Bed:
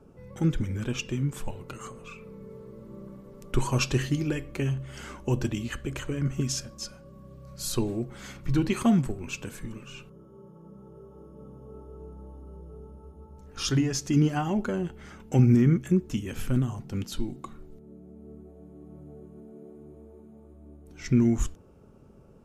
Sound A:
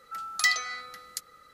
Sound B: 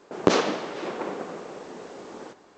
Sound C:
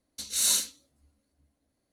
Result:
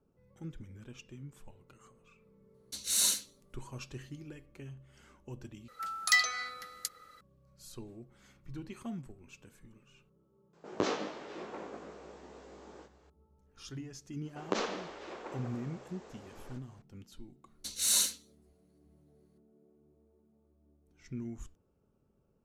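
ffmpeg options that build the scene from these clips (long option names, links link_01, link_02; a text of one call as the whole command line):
ffmpeg -i bed.wav -i cue0.wav -i cue1.wav -i cue2.wav -filter_complex "[3:a]asplit=2[link_01][link_02];[2:a]asplit=2[link_03][link_04];[0:a]volume=-19dB[link_05];[link_03]asplit=2[link_06][link_07];[link_07]adelay=19,volume=-3dB[link_08];[link_06][link_08]amix=inputs=2:normalize=0[link_09];[link_04]highpass=frequency=380:poles=1[link_10];[link_05]asplit=2[link_11][link_12];[link_11]atrim=end=5.684[link_13];[1:a]atrim=end=1.53,asetpts=PTS-STARTPTS,volume=-1.5dB[link_14];[link_12]atrim=start=7.206[link_15];[link_01]atrim=end=1.92,asetpts=PTS-STARTPTS,volume=-3.5dB,afade=type=in:duration=0.004:curve=hsin,afade=type=out:start_time=1.916:duration=0.004:curve=hsin,adelay=2540[link_16];[link_09]atrim=end=2.57,asetpts=PTS-STARTPTS,volume=-13.5dB,afade=type=in:duration=0.004:curve=hsin,afade=type=out:start_time=2.566:duration=0.004:curve=hsin,adelay=10530[link_17];[link_10]atrim=end=2.57,asetpts=PTS-STARTPTS,volume=-11dB,afade=type=in:duration=0.004:curve=hsin,afade=type=out:start_time=2.566:duration=0.004:curve=hsin,adelay=14250[link_18];[link_02]atrim=end=1.92,asetpts=PTS-STARTPTS,volume=-3dB,afade=type=in:duration=0.004:curve=hsin,afade=type=out:start_time=1.916:duration=0.004:curve=hsin,adelay=17460[link_19];[link_13][link_14]acrossfade=duration=0.004:curve1=hsin:curve2=hsin[link_20];[link_20][link_15]acrossfade=duration=0.004:curve1=hsin:curve2=hsin[link_21];[link_21][link_16][link_17][link_18][link_19]amix=inputs=5:normalize=0" out.wav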